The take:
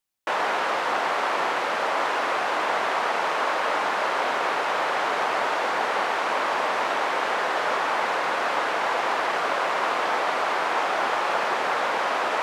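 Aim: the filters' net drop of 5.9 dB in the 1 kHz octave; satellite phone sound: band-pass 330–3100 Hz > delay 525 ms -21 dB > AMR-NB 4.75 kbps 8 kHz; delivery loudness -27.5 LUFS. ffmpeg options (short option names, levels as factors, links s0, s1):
-af "highpass=330,lowpass=3100,equalizer=f=1000:t=o:g=-7.5,aecho=1:1:525:0.0891,volume=2.11" -ar 8000 -c:a libopencore_amrnb -b:a 4750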